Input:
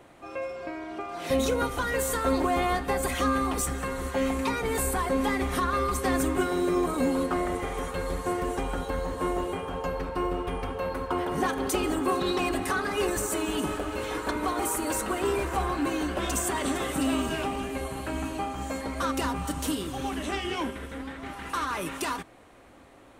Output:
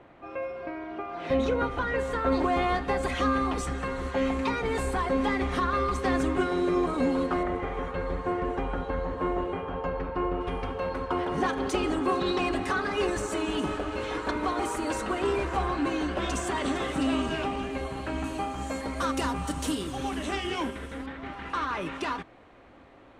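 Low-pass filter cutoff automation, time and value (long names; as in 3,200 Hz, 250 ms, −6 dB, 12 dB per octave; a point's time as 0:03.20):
2,700 Hz
from 0:02.32 4,700 Hz
from 0:07.43 2,500 Hz
from 0:10.41 5,400 Hz
from 0:18.24 9,700 Hz
from 0:21.06 3,700 Hz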